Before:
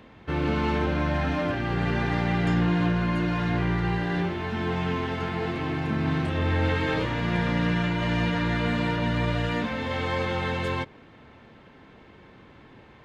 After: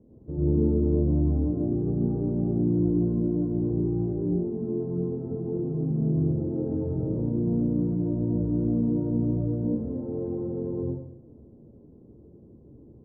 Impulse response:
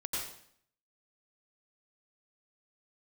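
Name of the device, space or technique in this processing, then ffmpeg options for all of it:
next room: -filter_complex "[0:a]lowpass=frequency=460:width=0.5412,lowpass=frequency=460:width=1.3066[link_01];[1:a]atrim=start_sample=2205[link_02];[link_01][link_02]afir=irnorm=-1:irlink=0,volume=-1.5dB"

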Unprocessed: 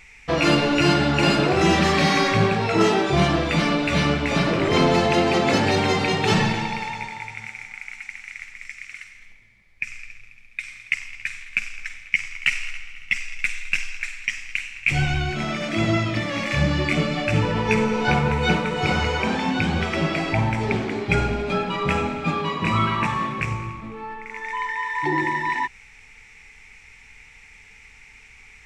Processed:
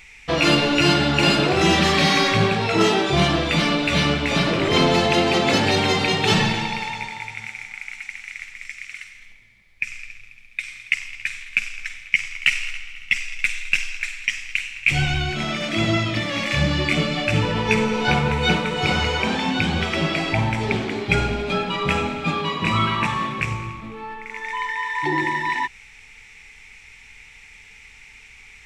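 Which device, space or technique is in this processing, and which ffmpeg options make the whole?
presence and air boost: -af "equalizer=frequency=3400:width_type=o:width=0.86:gain=5.5,highshelf=frequency=9100:gain=7"

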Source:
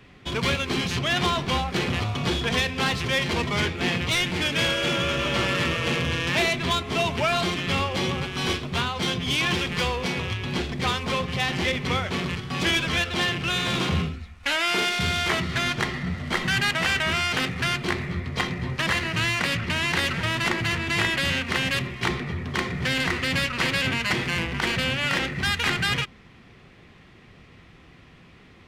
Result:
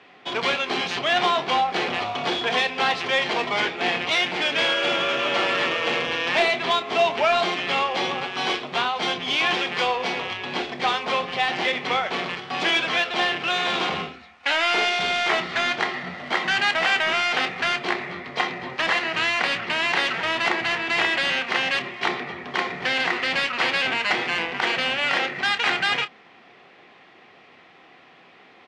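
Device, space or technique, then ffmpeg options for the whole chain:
intercom: -filter_complex "[0:a]highpass=390,lowpass=4500,equalizer=frequency=750:width_type=o:width=0.4:gain=7,asoftclip=type=tanh:threshold=-12.5dB,asplit=2[link_01][link_02];[link_02]adelay=28,volume=-12dB[link_03];[link_01][link_03]amix=inputs=2:normalize=0,volume=3dB"

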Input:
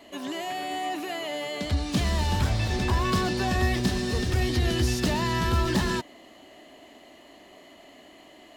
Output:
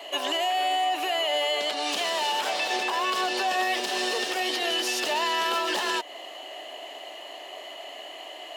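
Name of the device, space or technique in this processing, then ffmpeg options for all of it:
laptop speaker: -af "highpass=frequency=420:width=0.5412,highpass=frequency=420:width=1.3066,equalizer=frequency=760:width_type=o:width=0.57:gain=5,equalizer=frequency=2900:width_type=o:width=0.35:gain=8,alimiter=level_in=1.5dB:limit=-24dB:level=0:latency=1:release=170,volume=-1.5dB,volume=8dB"

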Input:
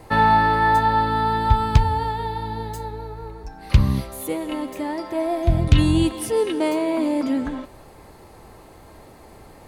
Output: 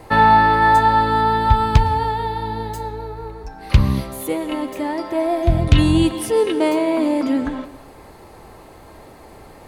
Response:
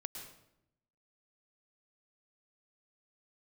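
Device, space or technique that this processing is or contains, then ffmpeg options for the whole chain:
filtered reverb send: -filter_complex "[0:a]asplit=2[link_01][link_02];[link_02]highpass=210,lowpass=5100[link_03];[1:a]atrim=start_sample=2205[link_04];[link_03][link_04]afir=irnorm=-1:irlink=0,volume=-8dB[link_05];[link_01][link_05]amix=inputs=2:normalize=0,asettb=1/sr,asplit=3[link_06][link_07][link_08];[link_06]atrim=end=0.624[link_09];[link_07]atrim=start=0.62:end=1.22,asetpts=PTS-STARTPTS,afade=type=in:duration=0.004:curve=qsin,afade=type=out:start_time=0.596:duration=0.004:curve=qsin,equalizer=frequency=7500:width=1.9:gain=5.5[link_10];[link_08]atrim=start=1.216[link_11];[link_09][link_10]acrossfade=duration=0.004:curve1=hsin:curve2=qsin[link_12];[link_12][link_11]acrossfade=duration=0.004:curve1=qsin:curve2=hsin,volume=2dB"

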